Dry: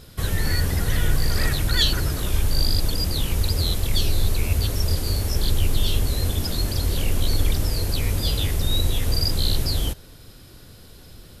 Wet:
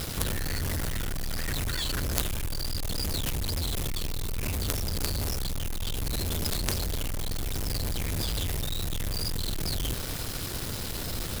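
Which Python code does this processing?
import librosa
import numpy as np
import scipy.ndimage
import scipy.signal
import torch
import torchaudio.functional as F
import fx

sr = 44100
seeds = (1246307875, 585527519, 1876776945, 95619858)

y = fx.over_compress(x, sr, threshold_db=-26.0, ratio=-1.0)
y = fx.quant_companded(y, sr, bits=2)
y = y * 10.0 ** (-3.5 / 20.0)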